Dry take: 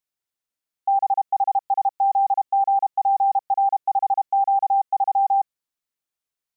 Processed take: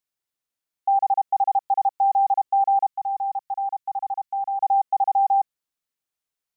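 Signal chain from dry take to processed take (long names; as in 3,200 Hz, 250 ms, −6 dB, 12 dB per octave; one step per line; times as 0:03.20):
0:02.87–0:04.60: parametric band 480 Hz −15 dB 1.3 octaves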